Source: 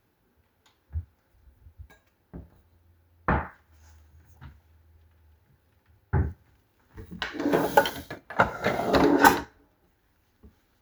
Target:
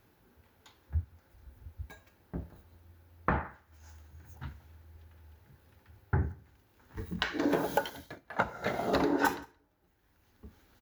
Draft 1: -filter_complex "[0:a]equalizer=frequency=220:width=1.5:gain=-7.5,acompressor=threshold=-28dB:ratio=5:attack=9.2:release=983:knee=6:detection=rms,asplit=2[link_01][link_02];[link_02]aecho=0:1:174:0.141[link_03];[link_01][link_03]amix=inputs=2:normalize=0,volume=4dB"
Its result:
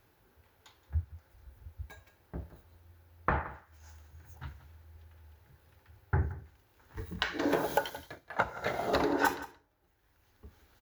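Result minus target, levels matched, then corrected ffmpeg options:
echo-to-direct +9.5 dB; 250 Hz band −2.5 dB
-filter_complex "[0:a]acompressor=threshold=-28dB:ratio=5:attack=9.2:release=983:knee=6:detection=rms,asplit=2[link_01][link_02];[link_02]aecho=0:1:174:0.0473[link_03];[link_01][link_03]amix=inputs=2:normalize=0,volume=4dB"

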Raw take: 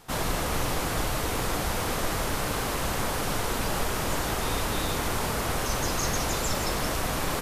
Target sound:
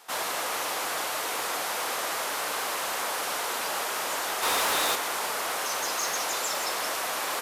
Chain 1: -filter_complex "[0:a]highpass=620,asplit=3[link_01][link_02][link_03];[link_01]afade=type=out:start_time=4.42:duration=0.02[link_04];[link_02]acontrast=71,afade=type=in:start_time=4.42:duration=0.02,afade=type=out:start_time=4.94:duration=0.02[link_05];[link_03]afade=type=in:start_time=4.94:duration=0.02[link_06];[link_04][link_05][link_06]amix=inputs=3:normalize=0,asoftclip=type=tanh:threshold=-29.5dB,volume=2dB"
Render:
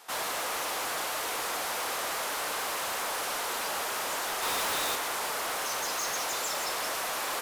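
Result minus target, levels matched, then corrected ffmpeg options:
soft clipping: distortion +8 dB
-filter_complex "[0:a]highpass=620,asplit=3[link_01][link_02][link_03];[link_01]afade=type=out:start_time=4.42:duration=0.02[link_04];[link_02]acontrast=71,afade=type=in:start_time=4.42:duration=0.02,afade=type=out:start_time=4.94:duration=0.02[link_05];[link_03]afade=type=in:start_time=4.94:duration=0.02[link_06];[link_04][link_05][link_06]amix=inputs=3:normalize=0,asoftclip=type=tanh:threshold=-21.5dB,volume=2dB"

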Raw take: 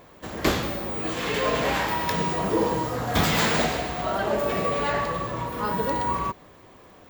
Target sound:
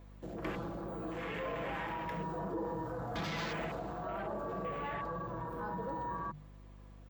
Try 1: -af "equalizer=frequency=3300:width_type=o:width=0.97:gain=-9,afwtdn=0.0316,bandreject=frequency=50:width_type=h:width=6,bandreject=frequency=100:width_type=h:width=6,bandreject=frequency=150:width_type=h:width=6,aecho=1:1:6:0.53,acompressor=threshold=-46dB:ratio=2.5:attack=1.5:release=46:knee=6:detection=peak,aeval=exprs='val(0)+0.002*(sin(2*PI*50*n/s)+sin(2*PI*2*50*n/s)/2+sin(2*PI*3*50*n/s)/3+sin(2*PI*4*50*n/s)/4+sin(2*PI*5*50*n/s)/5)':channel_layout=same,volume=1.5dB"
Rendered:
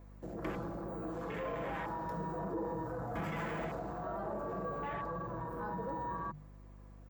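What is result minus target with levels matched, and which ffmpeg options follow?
4,000 Hz band −9.0 dB
-af "afwtdn=0.0316,bandreject=frequency=50:width_type=h:width=6,bandreject=frequency=100:width_type=h:width=6,bandreject=frequency=150:width_type=h:width=6,aecho=1:1:6:0.53,acompressor=threshold=-46dB:ratio=2.5:attack=1.5:release=46:knee=6:detection=peak,aeval=exprs='val(0)+0.002*(sin(2*PI*50*n/s)+sin(2*PI*2*50*n/s)/2+sin(2*PI*3*50*n/s)/3+sin(2*PI*4*50*n/s)/4+sin(2*PI*5*50*n/s)/5)':channel_layout=same,volume=1.5dB"

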